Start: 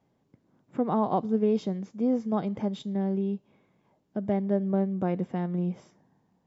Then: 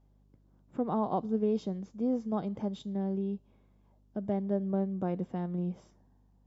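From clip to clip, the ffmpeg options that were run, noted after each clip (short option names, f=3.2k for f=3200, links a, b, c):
-af "equalizer=f=2.1k:t=o:w=0.73:g=-5.5,aeval=exprs='val(0)+0.00112*(sin(2*PI*50*n/s)+sin(2*PI*2*50*n/s)/2+sin(2*PI*3*50*n/s)/3+sin(2*PI*4*50*n/s)/4+sin(2*PI*5*50*n/s)/5)':c=same,volume=-4.5dB"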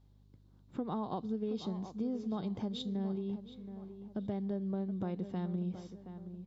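-filter_complex "[0:a]equalizer=f=100:t=o:w=0.67:g=5,equalizer=f=630:t=o:w=0.67:g=-5,equalizer=f=4k:t=o:w=0.67:g=11,acompressor=threshold=-33dB:ratio=6,asplit=2[a][b];[b]adelay=723,lowpass=f=2.3k:p=1,volume=-11dB,asplit=2[c][d];[d]adelay=723,lowpass=f=2.3k:p=1,volume=0.41,asplit=2[e][f];[f]adelay=723,lowpass=f=2.3k:p=1,volume=0.41,asplit=2[g][h];[h]adelay=723,lowpass=f=2.3k:p=1,volume=0.41[i];[a][c][e][g][i]amix=inputs=5:normalize=0"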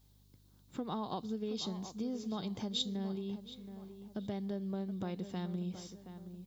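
-af "crystalizer=i=6:c=0,volume=-2.5dB"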